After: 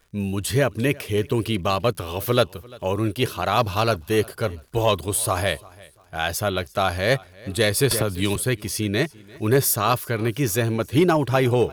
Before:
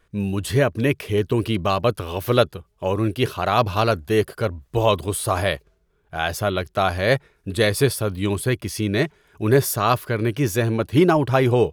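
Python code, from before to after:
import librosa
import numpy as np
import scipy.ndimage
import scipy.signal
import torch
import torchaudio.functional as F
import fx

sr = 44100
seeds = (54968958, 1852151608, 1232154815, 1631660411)

p1 = fx.high_shelf(x, sr, hz=4000.0, db=7.0)
p2 = fx.dmg_crackle(p1, sr, seeds[0], per_s=79.0, level_db=-43.0)
p3 = np.clip(p2, -10.0 ** (-10.5 / 20.0), 10.0 ** (-10.5 / 20.0))
p4 = p2 + (p3 * librosa.db_to_amplitude(-5.5))
p5 = fx.echo_feedback(p4, sr, ms=345, feedback_pct=33, wet_db=-23)
p6 = fx.band_squash(p5, sr, depth_pct=100, at=(7.91, 8.36))
y = p6 * librosa.db_to_amplitude(-5.5)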